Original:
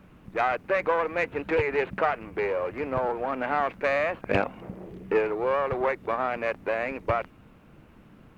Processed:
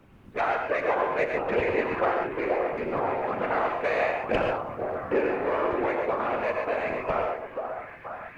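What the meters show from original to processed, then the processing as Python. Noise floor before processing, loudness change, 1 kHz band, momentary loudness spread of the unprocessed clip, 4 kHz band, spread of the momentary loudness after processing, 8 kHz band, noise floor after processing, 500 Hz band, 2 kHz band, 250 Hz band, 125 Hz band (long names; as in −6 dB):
−54 dBFS, 0.0 dB, +1.0 dB, 5 LU, +0.5 dB, 7 LU, can't be measured, −47 dBFS, +0.5 dB, −0.5 dB, +1.5 dB, −2.5 dB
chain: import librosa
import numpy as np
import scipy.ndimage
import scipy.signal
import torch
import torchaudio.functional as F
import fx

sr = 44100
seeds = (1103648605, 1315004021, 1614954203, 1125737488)

y = fx.echo_stepped(x, sr, ms=480, hz=560.0, octaves=0.7, feedback_pct=70, wet_db=-4.0)
y = fx.whisperise(y, sr, seeds[0])
y = fx.rev_gated(y, sr, seeds[1], gate_ms=160, shape='rising', drr_db=2.5)
y = y * librosa.db_to_amplitude(-2.5)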